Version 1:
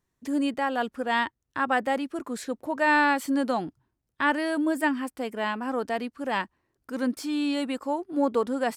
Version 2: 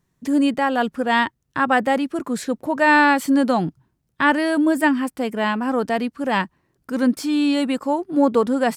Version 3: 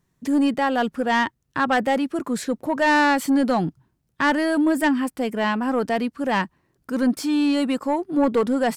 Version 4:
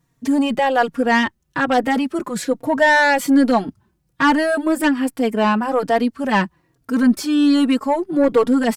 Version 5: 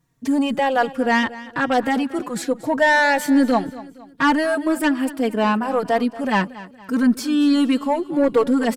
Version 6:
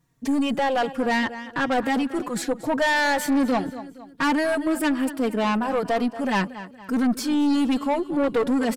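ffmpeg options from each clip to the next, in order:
ffmpeg -i in.wav -af "equalizer=frequency=160:width=1.8:gain=9.5,volume=6.5dB" out.wav
ffmpeg -i in.wav -af "asoftclip=type=tanh:threshold=-12dB" out.wav
ffmpeg -i in.wav -filter_complex "[0:a]asplit=2[link_01][link_02];[link_02]adelay=3.7,afreqshift=-1.2[link_03];[link_01][link_03]amix=inputs=2:normalize=1,volume=7dB" out.wav
ffmpeg -i in.wav -af "aecho=1:1:233|466|699:0.133|0.0547|0.0224,volume=-2dB" out.wav
ffmpeg -i in.wav -af "aeval=exprs='(tanh(7.08*val(0)+0.2)-tanh(0.2))/7.08':channel_layout=same" out.wav

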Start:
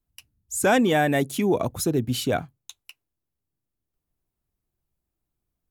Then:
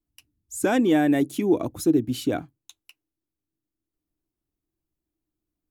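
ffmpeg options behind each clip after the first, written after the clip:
ffmpeg -i in.wav -af "equalizer=frequency=310:width=3.2:gain=15,volume=-5.5dB" out.wav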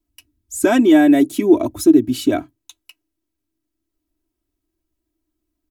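ffmpeg -i in.wav -af "aecho=1:1:3.1:0.78,volume=4.5dB" out.wav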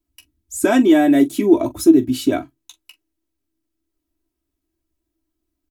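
ffmpeg -i in.wav -af "aecho=1:1:15|43:0.355|0.15,volume=-1dB" out.wav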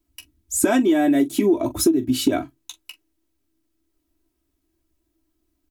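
ffmpeg -i in.wav -af "acompressor=threshold=-19dB:ratio=16,volume=5dB" out.wav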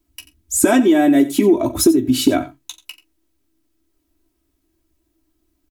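ffmpeg -i in.wav -af "aecho=1:1:88:0.15,volume=4.5dB" out.wav

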